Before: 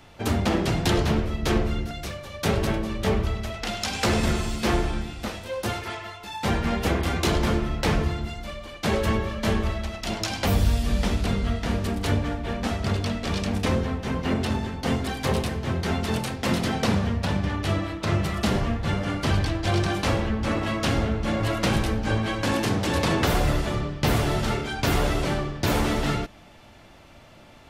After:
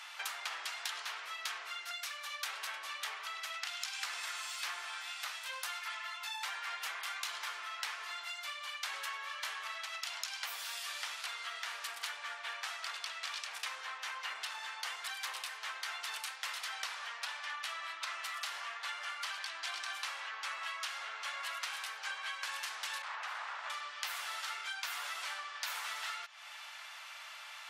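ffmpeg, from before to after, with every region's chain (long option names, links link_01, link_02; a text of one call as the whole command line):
ffmpeg -i in.wav -filter_complex "[0:a]asettb=1/sr,asplit=3[link_01][link_02][link_03];[link_01]atrim=end=23.024[link_04];[link_02]atrim=start=23.02:end=23.7,asetpts=PTS-STARTPTS,afade=type=in:duration=0.004:curve=qsin,afade=type=out:start_time=0.676:duration=0.004:curve=qsin,aeval=exprs='0.0794*(abs(mod(val(0)/0.0794+3,4)-2)-1)':channel_layout=same,bandpass=frequency=770:width_type=q:width=0.81[link_05];[link_03]atrim=start=23.696[link_06];[link_04][link_05]acrossfade=duration=0.004:curve1=hsin:curve2=qsin[link_07];[link_07][link_06]acrossfade=duration=0.004:curve1=qsin:curve2=hsin,highpass=frequency=1100:width=0.5412,highpass=frequency=1100:width=1.3066,acompressor=threshold=-47dB:ratio=5,afftfilt=real='re*gte(hypot(re,im),0.000178)':imag='im*gte(hypot(re,im),0.000178)':win_size=1024:overlap=0.75,volume=7dB" out.wav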